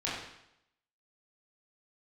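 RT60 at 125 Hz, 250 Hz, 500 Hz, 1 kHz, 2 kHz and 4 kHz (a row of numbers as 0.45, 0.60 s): 0.80, 0.80, 0.80, 0.80, 0.75, 0.75 s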